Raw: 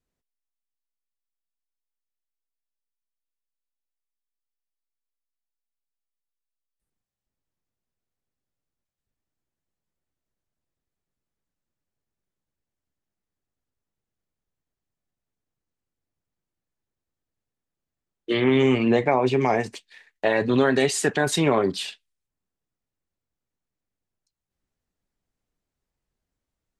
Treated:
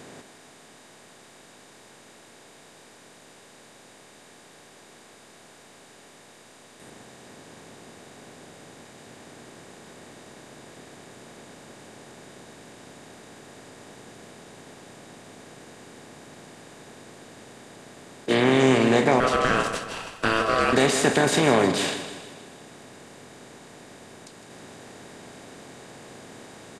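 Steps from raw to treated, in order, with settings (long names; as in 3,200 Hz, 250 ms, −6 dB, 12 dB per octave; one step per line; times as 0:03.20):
compressor on every frequency bin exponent 0.4
0:19.20–0:20.73: ring modulation 890 Hz
on a send: repeating echo 158 ms, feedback 51%, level −10.5 dB
on the sum: level −3.5 dB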